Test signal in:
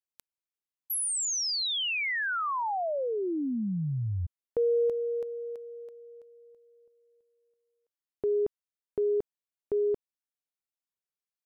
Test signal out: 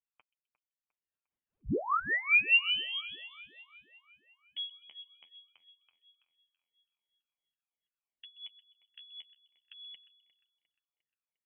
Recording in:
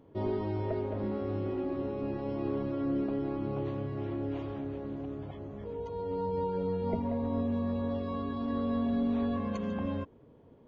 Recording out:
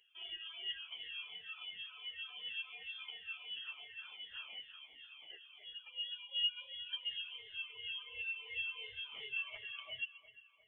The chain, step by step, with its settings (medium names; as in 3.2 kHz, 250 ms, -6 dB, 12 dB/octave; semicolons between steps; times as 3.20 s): drifting ripple filter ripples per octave 1, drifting +2.8 Hz, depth 15 dB; high-pass 870 Hz 24 dB/octave; reverb removal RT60 1.7 s; treble shelf 2 kHz -12 dB; level rider gain up to 4 dB; flange 0.5 Hz, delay 5.3 ms, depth 9.2 ms, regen +24%; two-band feedback delay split 1.1 kHz, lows 128 ms, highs 353 ms, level -15.5 dB; frequency inversion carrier 3.8 kHz; trim +3.5 dB